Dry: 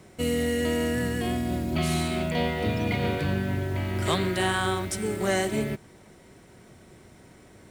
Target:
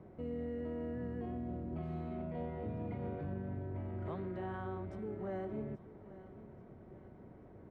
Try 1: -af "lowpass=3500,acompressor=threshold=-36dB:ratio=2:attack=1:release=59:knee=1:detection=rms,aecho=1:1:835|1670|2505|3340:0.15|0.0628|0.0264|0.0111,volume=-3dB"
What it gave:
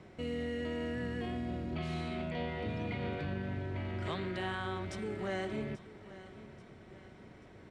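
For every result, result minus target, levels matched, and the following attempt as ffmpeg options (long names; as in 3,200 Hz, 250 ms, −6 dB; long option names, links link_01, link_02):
4,000 Hz band +18.5 dB; downward compressor: peak gain reduction −2.5 dB
-af "lowpass=900,acompressor=threshold=-36dB:ratio=2:attack=1:release=59:knee=1:detection=rms,aecho=1:1:835|1670|2505|3340:0.15|0.0628|0.0264|0.0111,volume=-3dB"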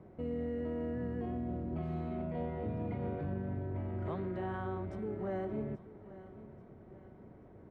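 downward compressor: peak gain reduction −3 dB
-af "lowpass=900,acompressor=threshold=-42.5dB:ratio=2:attack=1:release=59:knee=1:detection=rms,aecho=1:1:835|1670|2505|3340:0.15|0.0628|0.0264|0.0111,volume=-3dB"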